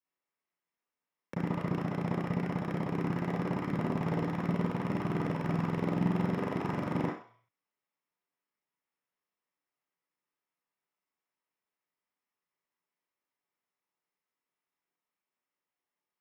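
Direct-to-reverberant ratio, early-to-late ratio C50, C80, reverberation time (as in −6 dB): −6.0 dB, 2.0 dB, 7.5 dB, 0.50 s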